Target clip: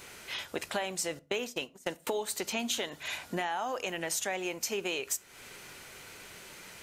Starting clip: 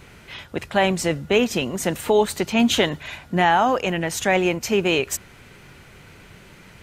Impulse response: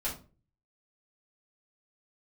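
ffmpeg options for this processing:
-filter_complex "[0:a]asettb=1/sr,asplit=3[a][b][c];[a]atrim=end=1.194[d];[b]atrim=start=1.19:end=2.07,asetpts=PTS-STARTPTS,afade=t=in:d=0.004:c=qsin,afade=t=out:st=0.876:d=0.004:c=qsin,agate=range=-33dB:threshold=-22dB:ratio=16:detection=peak[e];[c]atrim=start=2.066[f];[d][e]acrossfade=d=0.004:c1=hsin:c2=qsin[g];[g][f]acrossfade=d=0.004:c1=qsin:c2=hsin,bass=f=250:g=-13,treble=f=4k:g=9,acompressor=threshold=-29dB:ratio=6,asplit=2[h][i];[1:a]atrim=start_sample=2205,adelay=8[j];[i][j]afir=irnorm=-1:irlink=0,volume=-21dB[k];[h][k]amix=inputs=2:normalize=0,volume=-2dB"

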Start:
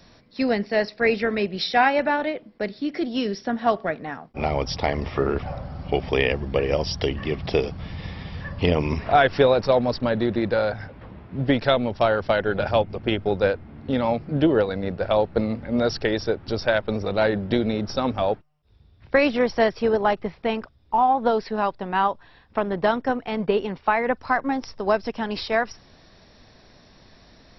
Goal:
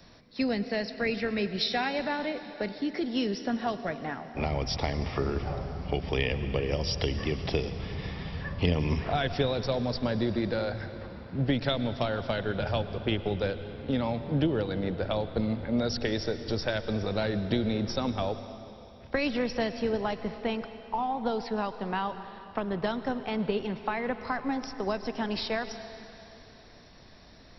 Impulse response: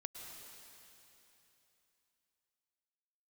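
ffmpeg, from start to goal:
-filter_complex "[0:a]acrossover=split=230|3000[a][b][c];[b]acompressor=threshold=-28dB:ratio=4[d];[a][d][c]amix=inputs=3:normalize=0,asplit=2[e][f];[1:a]atrim=start_sample=2205[g];[f][g]afir=irnorm=-1:irlink=0,volume=0dB[h];[e][h]amix=inputs=2:normalize=0,volume=-6dB"

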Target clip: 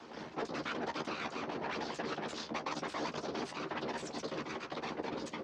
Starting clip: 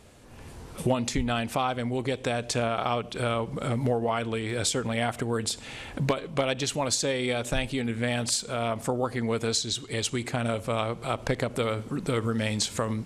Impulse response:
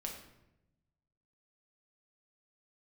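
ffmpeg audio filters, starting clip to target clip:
-filter_complex "[0:a]lowshelf=f=500:g=5.5,areverse,acompressor=threshold=-33dB:ratio=20,areverse,aeval=exprs='max(val(0),0)':c=same,afreqshift=23,afftfilt=real='hypot(re,im)*cos(2*PI*random(0))':imag='hypot(re,im)*sin(2*PI*random(1))':win_size=512:overlap=0.75,atempo=1.2,highpass=f=170:t=q:w=0.5412,highpass=f=170:t=q:w=1.307,lowpass=f=3k:t=q:w=0.5176,lowpass=f=3k:t=q:w=0.7071,lowpass=f=3k:t=q:w=1.932,afreqshift=-58,asplit=2[a][b];[b]adelay=26,volume=-7dB[c];[a][c]amix=inputs=2:normalize=0,asetrate=88200,aresample=44100,volume=10dB"

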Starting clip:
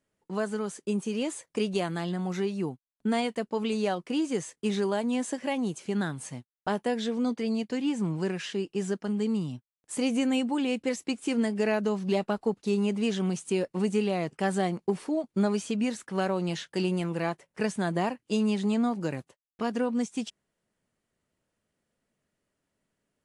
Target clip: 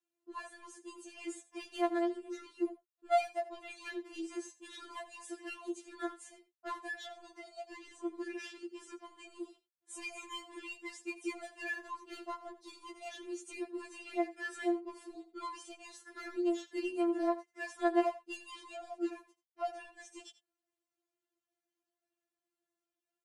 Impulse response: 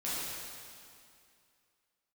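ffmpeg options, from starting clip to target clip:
-filter_complex "[0:a]highpass=f=290:w=0.5412,highpass=f=290:w=1.3066,asplit=2[a][b];[b]adynamicsmooth=sensitivity=5:basefreq=740,volume=0dB[c];[a][c]amix=inputs=2:normalize=0,aecho=1:1:85:0.158,afftfilt=real='re*4*eq(mod(b,16),0)':imag='im*4*eq(mod(b,16),0)':win_size=2048:overlap=0.75,volume=-8.5dB"

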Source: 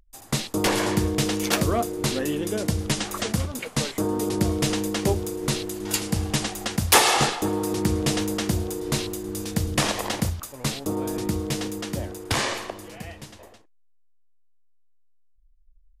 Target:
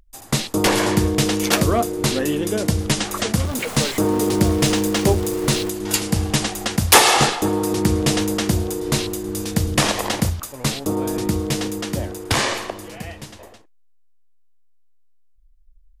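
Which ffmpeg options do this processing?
-filter_complex "[0:a]asettb=1/sr,asplit=3[a][b][c];[a]atrim=end=3.454[d];[b]atrim=start=3.45:end=5.7,asetpts=PTS-STARTPTS,afade=t=in:d=0.004:c=qsin,afade=t=out:st=2.246:d=0.004:c=qsin,aeval=exprs='val(0)+0.5*0.0237*sgn(val(0))':c=same[e];[c]atrim=start=5.696[f];[d][e]acrossfade=d=0.004:c1=hsin:c2=qsin[g];[g][f]acrossfade=d=0.004:c1=qsin:c2=hsin,volume=5dB"

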